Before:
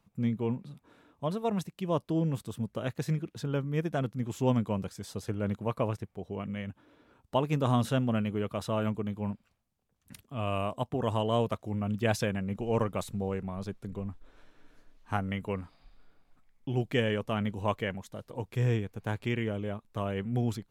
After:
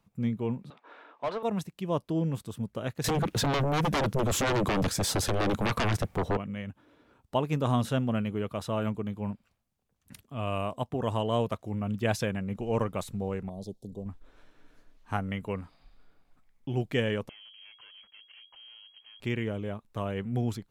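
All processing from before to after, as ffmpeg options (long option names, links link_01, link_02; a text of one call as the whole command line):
ffmpeg -i in.wav -filter_complex "[0:a]asettb=1/sr,asplit=3[link_01][link_02][link_03];[link_01]atrim=end=0.704[link_04];[link_02]atrim=start=0.7:end=1.43,asetpts=PTS-STARTPTS,afade=type=in:duration=0.004:curve=qsin,afade=type=out:start_time=0.726:duration=0.004:curve=qsin,highpass=490,lowpass=3900,asplit=2[link_05][link_06];[link_06]highpass=frequency=720:poles=1,volume=21dB,asoftclip=type=tanh:threshold=-22dB[link_07];[link_05][link_07]amix=inputs=2:normalize=0,lowpass=frequency=1700:poles=1,volume=-6dB[link_08];[link_03]atrim=start=1.426[link_09];[link_04][link_08]acrossfade=duration=0.004:curve1=hsin:curve2=qsin[link_10];[link_10][link_09]acrossfade=duration=0.004:curve1=qsin:curve2=hsin,asettb=1/sr,asplit=3[link_11][link_12][link_13];[link_11]atrim=end=3.044[link_14];[link_12]atrim=start=3.04:end=6.37,asetpts=PTS-STARTPTS,afade=type=in:duration=0.004:curve=qsin,afade=type=out:start_time=3.326:duration=0.004:curve=qsin,acompressor=threshold=-31dB:ratio=3:attack=3.2:release=140:knee=1:detection=peak,aeval=exprs='0.0708*sin(PI/2*5.01*val(0)/0.0708)':channel_layout=same[link_15];[link_13]atrim=start=6.366[link_16];[link_14][link_15]acrossfade=duration=0.004:curve1=hsin:curve2=qsin[link_17];[link_17][link_16]acrossfade=duration=0.004:curve1=qsin:curve2=hsin,asettb=1/sr,asplit=3[link_18][link_19][link_20];[link_18]atrim=end=13.494[link_21];[link_19]atrim=start=13.49:end=14.06,asetpts=PTS-STARTPTS,afade=type=in:duration=0.004:curve=qsin,afade=type=out:start_time=0.566:duration=0.004:curve=qsin,asuperstop=centerf=1700:order=8:qfactor=0.6,lowshelf=frequency=130:gain=-7.5[link_22];[link_20]atrim=start=14.056[link_23];[link_21][link_22]acrossfade=duration=0.004:curve1=hsin:curve2=qsin[link_24];[link_24][link_23]acrossfade=duration=0.004:curve1=qsin:curve2=hsin,asettb=1/sr,asplit=3[link_25][link_26][link_27];[link_25]atrim=end=17.294[link_28];[link_26]atrim=start=17.29:end=19.2,asetpts=PTS-STARTPTS,afade=type=in:duration=0.004:curve=qsin,afade=type=out:start_time=1.906:duration=0.004:curve=qsin,acompressor=threshold=-40dB:ratio=12:attack=3.2:release=140:knee=1:detection=peak,aeval=exprs='(tanh(316*val(0)+0.45)-tanh(0.45))/316':channel_layout=same,lowpass=frequency=2800:width_type=q:width=0.5098,lowpass=frequency=2800:width_type=q:width=0.6013,lowpass=frequency=2800:width_type=q:width=0.9,lowpass=frequency=2800:width_type=q:width=2.563,afreqshift=-3300[link_29];[link_27]atrim=start=19.196[link_30];[link_28][link_29]acrossfade=duration=0.004:curve1=hsin:curve2=qsin[link_31];[link_31][link_30]acrossfade=duration=0.004:curve1=qsin:curve2=hsin" out.wav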